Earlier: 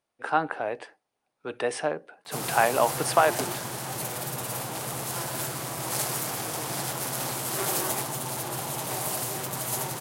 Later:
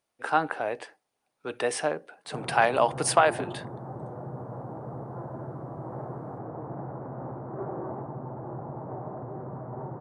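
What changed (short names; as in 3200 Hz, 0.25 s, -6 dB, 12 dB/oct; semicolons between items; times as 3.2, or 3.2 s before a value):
speech: add high shelf 4600 Hz +4.5 dB; background: add Gaussian blur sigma 9 samples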